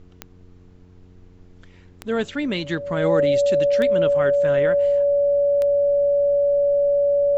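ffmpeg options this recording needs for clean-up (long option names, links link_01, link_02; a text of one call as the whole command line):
ffmpeg -i in.wav -af "adeclick=threshold=4,bandreject=frequency=90.1:width_type=h:width=4,bandreject=frequency=180.2:width_type=h:width=4,bandreject=frequency=270.3:width_type=h:width=4,bandreject=frequency=360.4:width_type=h:width=4,bandreject=frequency=450.5:width_type=h:width=4,bandreject=frequency=570:width=30,agate=range=-21dB:threshold=-40dB" out.wav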